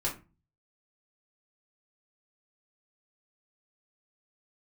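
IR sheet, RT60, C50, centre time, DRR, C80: 0.30 s, 10.0 dB, 21 ms, -5.5 dB, 17.0 dB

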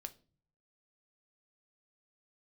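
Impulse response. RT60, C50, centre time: no single decay rate, 18.5 dB, 4 ms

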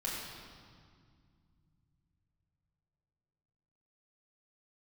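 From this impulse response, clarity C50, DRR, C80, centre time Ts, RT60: -0.5 dB, -6.0 dB, 1.0 dB, 102 ms, 2.1 s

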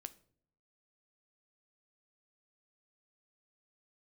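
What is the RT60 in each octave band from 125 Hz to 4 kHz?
0.90 s, 0.80 s, 0.75 s, 0.45 s, 0.40 s, 0.40 s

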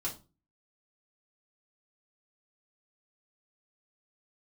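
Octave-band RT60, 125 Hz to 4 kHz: 0.50 s, 0.45 s, 0.35 s, 0.30 s, 0.25 s, 0.25 s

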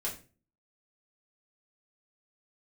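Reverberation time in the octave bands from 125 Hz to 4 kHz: 0.55 s, 0.55 s, 0.40 s, 0.30 s, 0.30 s, 0.30 s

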